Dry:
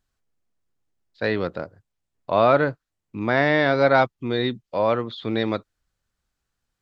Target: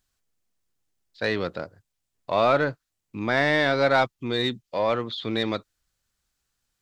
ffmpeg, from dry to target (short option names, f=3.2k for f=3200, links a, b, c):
-filter_complex "[0:a]highshelf=f=2.5k:g=9.5,asplit=2[a][b];[b]asoftclip=type=tanh:threshold=-19.5dB,volume=-5dB[c];[a][c]amix=inputs=2:normalize=0,volume=-6dB"